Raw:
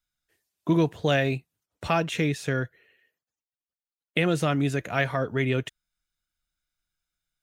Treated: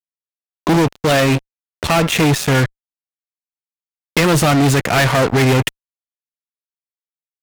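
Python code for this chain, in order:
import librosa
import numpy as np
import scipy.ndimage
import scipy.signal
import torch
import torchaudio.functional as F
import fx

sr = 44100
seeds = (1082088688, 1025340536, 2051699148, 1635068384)

y = fx.comb_fb(x, sr, f0_hz=270.0, decay_s=0.4, harmonics='all', damping=0.0, mix_pct=40, at=(0.79, 2.16))
y = fx.fuzz(y, sr, gain_db=36.0, gate_db=-39.0)
y = y * 10.0 ** (2.5 / 20.0)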